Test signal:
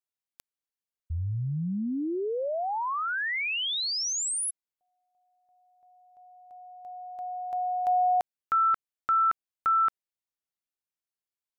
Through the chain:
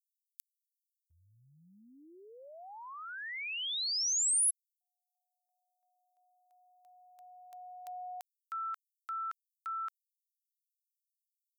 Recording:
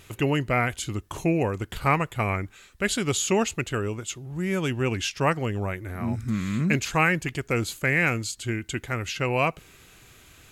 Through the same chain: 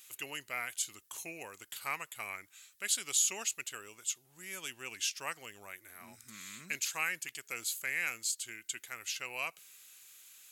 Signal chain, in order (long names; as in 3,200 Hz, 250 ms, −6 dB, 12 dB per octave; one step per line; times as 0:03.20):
first difference